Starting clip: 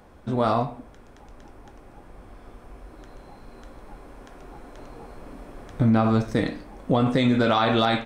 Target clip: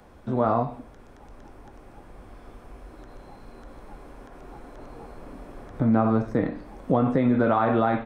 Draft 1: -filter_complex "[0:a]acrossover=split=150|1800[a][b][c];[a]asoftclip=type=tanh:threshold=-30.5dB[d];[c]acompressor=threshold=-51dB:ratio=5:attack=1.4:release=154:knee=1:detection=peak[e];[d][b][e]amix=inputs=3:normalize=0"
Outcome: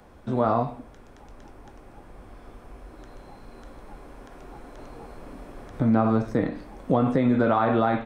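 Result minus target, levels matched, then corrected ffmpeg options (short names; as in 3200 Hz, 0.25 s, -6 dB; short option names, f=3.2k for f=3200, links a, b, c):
compressor: peak gain reduction -6 dB
-filter_complex "[0:a]acrossover=split=150|1800[a][b][c];[a]asoftclip=type=tanh:threshold=-30.5dB[d];[c]acompressor=threshold=-58.5dB:ratio=5:attack=1.4:release=154:knee=1:detection=peak[e];[d][b][e]amix=inputs=3:normalize=0"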